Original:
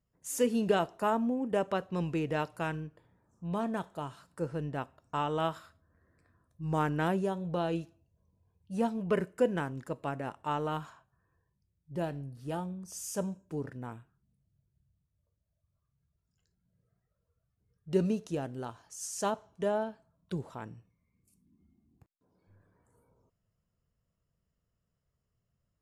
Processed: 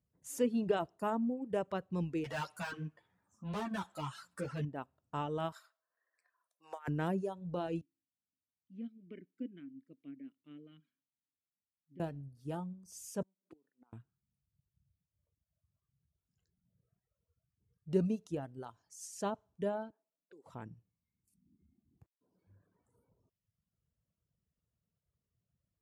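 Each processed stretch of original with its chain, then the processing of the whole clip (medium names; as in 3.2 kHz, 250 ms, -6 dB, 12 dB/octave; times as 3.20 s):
2.24–4.65 s: peaking EQ 420 Hz -9 dB 1.6 oct + overdrive pedal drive 27 dB, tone 7.3 kHz, clips at -22 dBFS + three-phase chorus
5.52–6.88 s: high-pass 630 Hz 24 dB/octave + compressor with a negative ratio -37 dBFS, ratio -0.5
7.81–12.00 s: vowel filter i + distance through air 82 m
13.22–13.93 s: high-pass 230 Hz 24 dB/octave + inverted gate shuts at -38 dBFS, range -24 dB
19.90–20.46 s: high-pass 310 Hz 24 dB/octave + level-controlled noise filter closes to 540 Hz, open at -43.5 dBFS + compression 3:1, threshold -54 dBFS
whole clip: bass shelf 430 Hz +7.5 dB; reverb removal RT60 1.3 s; high-pass 58 Hz; trim -7.5 dB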